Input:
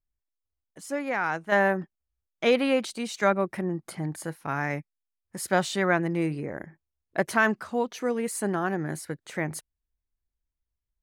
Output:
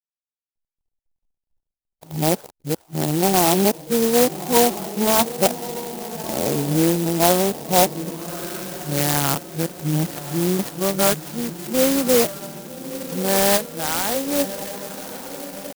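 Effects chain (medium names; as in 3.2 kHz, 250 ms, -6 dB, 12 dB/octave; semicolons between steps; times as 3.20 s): reverse the whole clip; tempo 0.7×; level rider gain up to 14 dB; hysteresis with a dead band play -58.5 dBFS; on a send: echo that smears into a reverb 1218 ms, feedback 54%, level -12 dB; on the sum: low-pass sweep 870 Hz -> 3.2 kHz, 7.97–9.16 s; treble shelf 2.9 kHz -12 dB; sampling jitter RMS 0.15 ms; trim -3.5 dB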